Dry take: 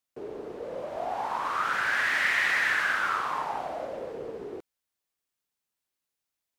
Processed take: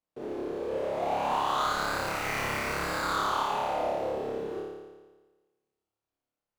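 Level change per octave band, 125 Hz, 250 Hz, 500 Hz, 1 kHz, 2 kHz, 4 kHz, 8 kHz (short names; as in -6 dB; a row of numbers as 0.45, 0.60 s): +10.0, +6.5, +4.5, +1.5, -9.0, 0.0, +3.0 dB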